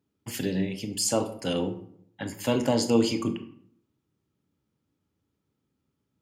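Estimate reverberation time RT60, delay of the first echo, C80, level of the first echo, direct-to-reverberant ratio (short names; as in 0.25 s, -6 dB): 0.65 s, none, 15.0 dB, none, 8.5 dB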